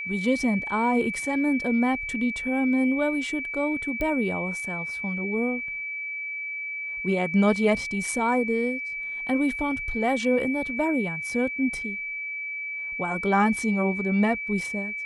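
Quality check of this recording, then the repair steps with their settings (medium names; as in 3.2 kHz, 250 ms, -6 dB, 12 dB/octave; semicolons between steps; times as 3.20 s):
whine 2.3 kHz -30 dBFS
4.01 s: pop -17 dBFS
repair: de-click; band-stop 2.3 kHz, Q 30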